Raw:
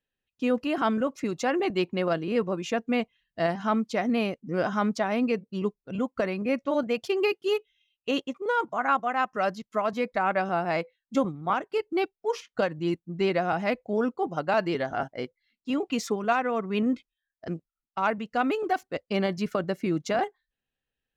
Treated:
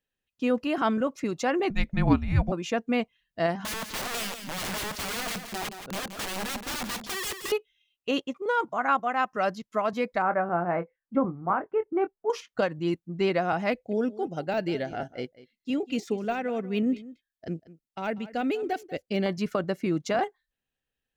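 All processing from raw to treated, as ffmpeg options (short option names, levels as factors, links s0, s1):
-filter_complex "[0:a]asettb=1/sr,asplit=3[s0][s1][s2];[s0]atrim=end=1.704[s3];[s1]atrim=start=1.7:end=2.52,asetpts=PTS-STARTPTS,afade=t=in:d=0.004:c=qsin,afade=t=out:st=0.816:d=0.004:c=qsin,equalizer=f=830:t=o:w=1.2:g=9.5,afreqshift=-390[s4];[s2]atrim=start=2.516[s5];[s3][s4]acrossfade=d=0.004:c1=hsin:c2=qsin[s6];[s6][s5]acrossfade=d=0.004:c1=qsin:c2=hsin,asettb=1/sr,asplit=3[s7][s8][s9];[s7]atrim=end=3.574[s10];[s8]atrim=start=3.57:end=7.52,asetpts=PTS-STARTPTS,afade=t=in:d=0.004:c=qsin,afade=t=out:st=3.946:d=0.004:c=qsin,highshelf=f=2700:g=-5.5,aeval=exprs='(mod(25.1*val(0)+1,2)-1)/25.1':c=same,aecho=1:1:173:0.355,atrim=end_sample=174195[s11];[s9]atrim=start=7.516[s12];[s10][s11]acrossfade=d=0.004:c1=hsin:c2=qsin[s13];[s13][s12]acrossfade=d=0.004:c1=qsin:c2=hsin,asettb=1/sr,asplit=3[s14][s15][s16];[s14]atrim=end=10.224[s17];[s15]atrim=start=10.22:end=12.3,asetpts=PTS-STARTPTS,afade=t=in:d=0.004:c=qsin,afade=t=out:st=2.076:d=0.004:c=qsin,lowpass=f=1700:w=0.5412,lowpass=f=1700:w=1.3066,asplit=2[s18][s19];[s19]adelay=23,volume=0.316[s20];[s18][s20]amix=inputs=2:normalize=0,atrim=end_sample=91728[s21];[s16]atrim=start=12.296[s22];[s17][s21]acrossfade=d=0.004:c1=hsin:c2=qsin[s23];[s23][s22]acrossfade=d=0.004:c1=qsin:c2=hsin,asettb=1/sr,asplit=3[s24][s25][s26];[s24]atrim=end=13.724[s27];[s25]atrim=start=13.72:end=19.26,asetpts=PTS-STARTPTS,afade=t=in:d=0.004:c=qsin,afade=t=out:st=5.536:d=0.004:c=qsin,deesser=1,equalizer=f=1100:t=o:w=0.7:g=-14.5,aecho=1:1:192:0.126,atrim=end_sample=244314[s28];[s26]atrim=start=19.256[s29];[s27][s28]acrossfade=d=0.004:c1=hsin:c2=qsin[s30];[s30][s29]acrossfade=d=0.004:c1=qsin:c2=hsin"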